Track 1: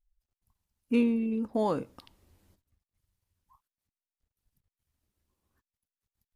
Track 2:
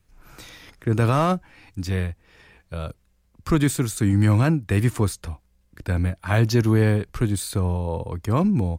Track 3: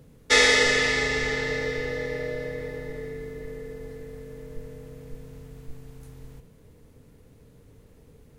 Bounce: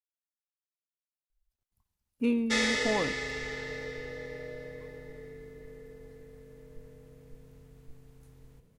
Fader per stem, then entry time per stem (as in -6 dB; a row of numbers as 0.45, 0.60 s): -2.5 dB, off, -10.5 dB; 1.30 s, off, 2.20 s